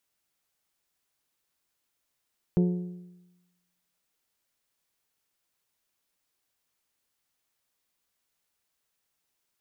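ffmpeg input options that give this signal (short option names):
-f lavfi -i "aevalsrc='0.126*pow(10,-3*t/1.05)*sin(2*PI*178*t)+0.0562*pow(10,-3*t/0.853)*sin(2*PI*356*t)+0.0251*pow(10,-3*t/0.807)*sin(2*PI*427.2*t)+0.0112*pow(10,-3*t/0.755)*sin(2*PI*534*t)+0.00501*pow(10,-3*t/0.693)*sin(2*PI*712*t)+0.00224*pow(10,-3*t/0.648)*sin(2*PI*890*t)':d=1.55:s=44100"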